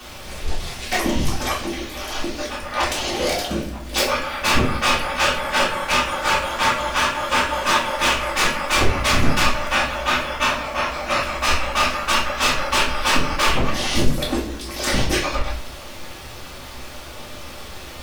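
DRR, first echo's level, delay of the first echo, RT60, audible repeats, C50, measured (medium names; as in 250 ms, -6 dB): -7.5 dB, no echo, no echo, 0.50 s, no echo, 6.0 dB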